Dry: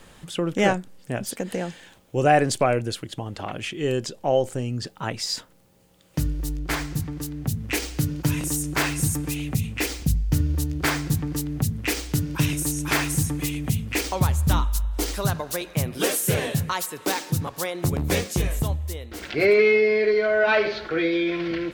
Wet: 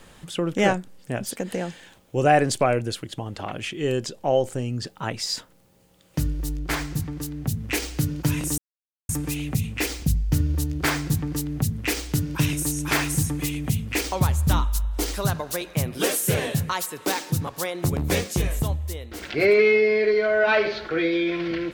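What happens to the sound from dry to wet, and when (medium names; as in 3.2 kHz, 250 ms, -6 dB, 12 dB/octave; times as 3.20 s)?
8.58–9.09 s: mute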